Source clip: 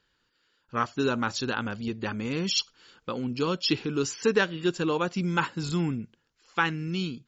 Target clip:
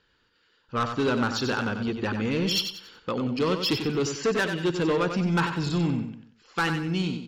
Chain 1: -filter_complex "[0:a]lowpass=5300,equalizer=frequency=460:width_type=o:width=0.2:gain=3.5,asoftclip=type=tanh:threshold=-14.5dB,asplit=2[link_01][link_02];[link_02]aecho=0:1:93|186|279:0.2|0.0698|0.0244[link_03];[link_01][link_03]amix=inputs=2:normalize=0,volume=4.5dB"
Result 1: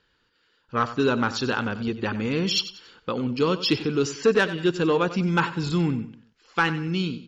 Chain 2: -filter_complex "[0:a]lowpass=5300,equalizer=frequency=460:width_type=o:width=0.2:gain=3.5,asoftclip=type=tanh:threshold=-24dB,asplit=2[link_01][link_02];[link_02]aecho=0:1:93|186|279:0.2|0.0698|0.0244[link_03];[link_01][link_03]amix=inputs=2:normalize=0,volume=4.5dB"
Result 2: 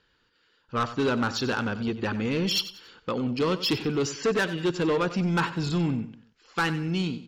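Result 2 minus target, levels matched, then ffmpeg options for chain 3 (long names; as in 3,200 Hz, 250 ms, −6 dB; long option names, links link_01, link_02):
echo-to-direct −6.5 dB
-filter_complex "[0:a]lowpass=5300,equalizer=frequency=460:width_type=o:width=0.2:gain=3.5,asoftclip=type=tanh:threshold=-24dB,asplit=2[link_01][link_02];[link_02]aecho=0:1:93|186|279|372:0.422|0.148|0.0517|0.0181[link_03];[link_01][link_03]amix=inputs=2:normalize=0,volume=4.5dB"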